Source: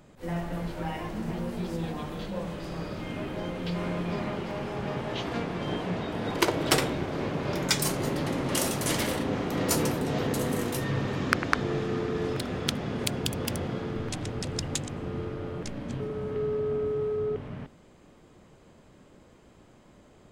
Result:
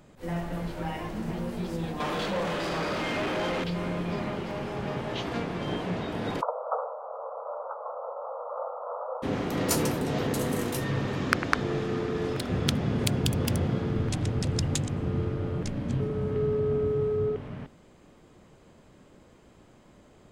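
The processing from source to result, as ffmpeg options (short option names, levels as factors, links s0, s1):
-filter_complex "[0:a]asettb=1/sr,asplit=3[s0][s1][s2];[s0]atrim=end=2.004[s3];[s1]atrim=start=2:end=3.64,asetpts=PTS-STARTPTS,afade=t=in:d=0.004:c=qsin,afade=t=out:st=1.636:d=0.004:c=qsin,asplit=2[s4][s5];[s5]highpass=f=720:p=1,volume=15.8,asoftclip=type=tanh:threshold=0.0794[s6];[s4][s6]amix=inputs=2:normalize=0,lowpass=f=3500:p=1,volume=0.501[s7];[s2]atrim=start=3.636[s8];[s3][s7]acrossfade=d=0.004:c1=hsin:c2=qsin[s9];[s9][s8]acrossfade=d=0.004:c1=qsin:c2=hsin,asplit=3[s10][s11][s12];[s10]afade=t=out:st=6.4:d=0.02[s13];[s11]asuperpass=centerf=800:order=20:qfactor=0.93,afade=t=in:st=6.4:d=0.02,afade=t=out:st=9.22:d=0.02[s14];[s12]afade=t=in:st=9.22:d=0.02[s15];[s13][s14][s15]amix=inputs=3:normalize=0,asettb=1/sr,asplit=3[s16][s17][s18];[s16]atrim=end=12.494[s19];[s17]atrim=start=12.49:end=17.31,asetpts=PTS-STARTPTS,afade=t=in:d=0.004:c=qsin,afade=t=out:st=4.816:d=0.004:c=qsin,equalizer=f=94:w=0.47:g=8[s20];[s18]atrim=start=17.306[s21];[s19][s20]acrossfade=d=0.004:c1=hsin:c2=qsin[s22];[s22][s21]acrossfade=d=0.004:c1=qsin:c2=hsin"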